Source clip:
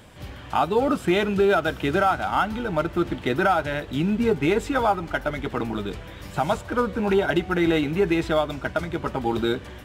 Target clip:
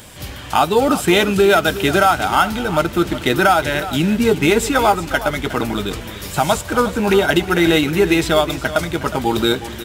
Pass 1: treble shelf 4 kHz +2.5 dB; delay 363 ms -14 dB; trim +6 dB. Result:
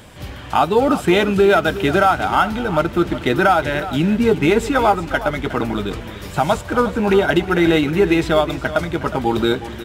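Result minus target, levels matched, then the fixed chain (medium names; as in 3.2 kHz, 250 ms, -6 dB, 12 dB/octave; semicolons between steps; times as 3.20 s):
8 kHz band -8.5 dB
treble shelf 4 kHz +14.5 dB; delay 363 ms -14 dB; trim +6 dB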